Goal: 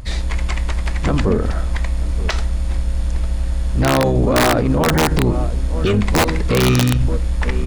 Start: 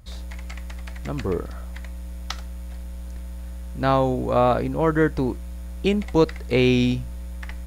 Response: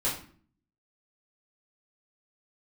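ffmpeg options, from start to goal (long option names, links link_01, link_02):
-filter_complex "[0:a]asplit=2[link_01][link_02];[link_02]equalizer=frequency=82:width=1.6:gain=14.5[link_03];[1:a]atrim=start_sample=2205,asetrate=43659,aresample=44100[link_04];[link_03][link_04]afir=irnorm=-1:irlink=0,volume=-24.5dB[link_05];[link_01][link_05]amix=inputs=2:normalize=0,aresample=22050,aresample=44100,asoftclip=type=hard:threshold=-12dB,asplit=2[link_06][link_07];[link_07]adelay=932.9,volume=-21dB,highshelf=frequency=4000:gain=-21[link_08];[link_06][link_08]amix=inputs=2:normalize=0,asplit=3[link_09][link_10][link_11];[link_10]asetrate=22050,aresample=44100,atempo=2,volume=-2dB[link_12];[link_11]asetrate=52444,aresample=44100,atempo=0.840896,volume=-11dB[link_13];[link_09][link_12][link_13]amix=inputs=3:normalize=0,aeval=exprs='(mod(2.51*val(0)+1,2)-1)/2.51':channel_layout=same,alimiter=level_in=18dB:limit=-1dB:release=50:level=0:latency=1,volume=-6.5dB"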